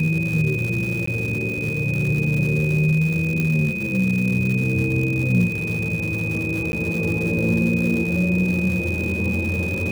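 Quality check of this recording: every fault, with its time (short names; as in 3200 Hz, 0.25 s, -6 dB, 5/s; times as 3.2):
crackle 290/s -26 dBFS
tone 2500 Hz -26 dBFS
1.06–1.07 gap 14 ms
3.4 pop -11 dBFS
6.72–6.73 gap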